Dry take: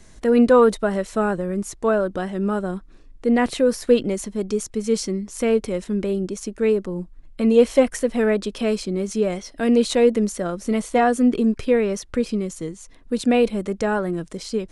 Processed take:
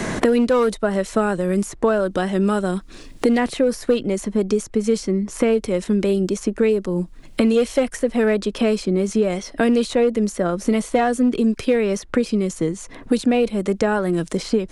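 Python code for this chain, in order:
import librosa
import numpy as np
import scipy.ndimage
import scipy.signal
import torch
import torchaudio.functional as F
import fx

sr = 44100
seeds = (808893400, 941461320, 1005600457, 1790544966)

p1 = np.clip(x, -10.0 ** (-12.0 / 20.0), 10.0 ** (-12.0 / 20.0))
p2 = x + (p1 * 10.0 ** (-3.0 / 20.0))
p3 = fx.band_squash(p2, sr, depth_pct=100)
y = p3 * 10.0 ** (-4.0 / 20.0)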